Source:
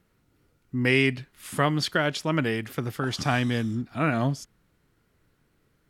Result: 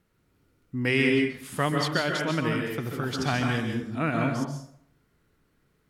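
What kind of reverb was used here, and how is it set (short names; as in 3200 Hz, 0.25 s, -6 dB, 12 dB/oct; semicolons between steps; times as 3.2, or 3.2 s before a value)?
plate-style reverb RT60 0.65 s, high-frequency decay 0.65×, pre-delay 0.12 s, DRR 1.5 dB; gain -3 dB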